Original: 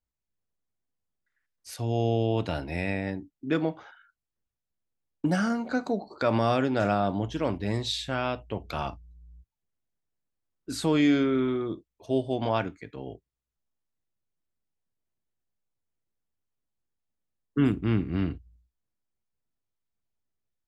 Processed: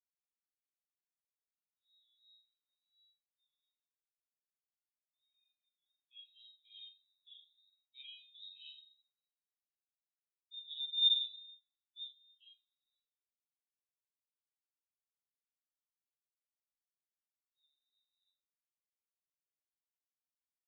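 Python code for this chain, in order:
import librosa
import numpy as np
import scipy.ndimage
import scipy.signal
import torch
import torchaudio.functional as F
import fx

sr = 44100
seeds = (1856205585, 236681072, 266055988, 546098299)

y = fx.doppler_pass(x, sr, speed_mps=7, closest_m=3.5, pass_at_s=9.5)
y = fx.peak_eq(y, sr, hz=2900.0, db=13.0, octaves=0.88)
y = fx.transient(y, sr, attack_db=3, sustain_db=-12)
y = fx.level_steps(y, sr, step_db=19)
y = fx.room_flutter(y, sr, wall_m=7.3, rt60_s=0.58)
y = fx.room_shoebox(y, sr, seeds[0], volume_m3=950.0, walls='furnished', distance_m=3.9)
y = fx.freq_invert(y, sr, carrier_hz=3900)
y = fx.brickwall_highpass(y, sr, low_hz=2100.0)
y = fx.spectral_expand(y, sr, expansion=2.5)
y = y * librosa.db_to_amplitude(-3.0)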